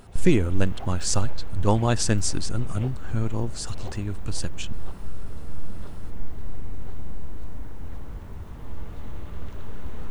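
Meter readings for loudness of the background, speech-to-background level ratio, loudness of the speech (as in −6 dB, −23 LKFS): −41.0 LKFS, 14.0 dB, −27.0 LKFS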